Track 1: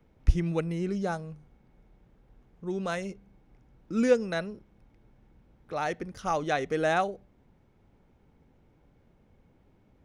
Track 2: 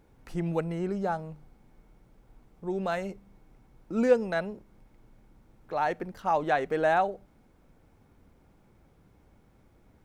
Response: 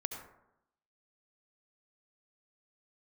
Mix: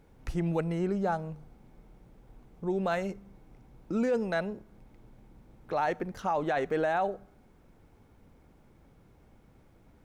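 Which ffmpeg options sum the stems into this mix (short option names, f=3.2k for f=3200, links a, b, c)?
-filter_complex "[0:a]acompressor=threshold=-36dB:ratio=2.5,volume=-4dB,asplit=2[a][b];[b]volume=-13.5dB[c];[1:a]volume=0dB,asplit=2[d][e];[e]apad=whole_len=443138[f];[a][f]sidechaincompress=threshold=-37dB:ratio=8:attack=16:release=415[g];[2:a]atrim=start_sample=2205[h];[c][h]afir=irnorm=-1:irlink=0[i];[g][d][i]amix=inputs=3:normalize=0,alimiter=limit=-20.5dB:level=0:latency=1:release=12"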